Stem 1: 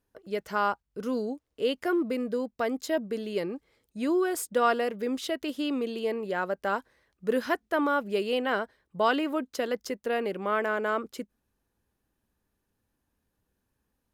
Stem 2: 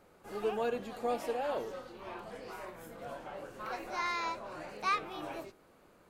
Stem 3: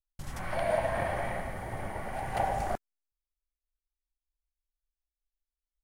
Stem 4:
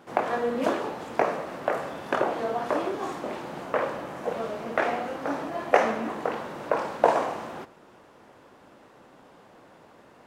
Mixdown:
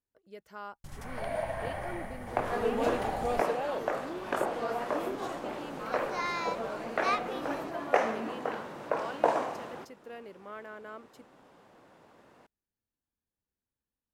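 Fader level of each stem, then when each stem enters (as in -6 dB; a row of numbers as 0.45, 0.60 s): -16.5, +1.0, -5.0, -5.5 dB; 0.00, 2.20, 0.65, 2.20 s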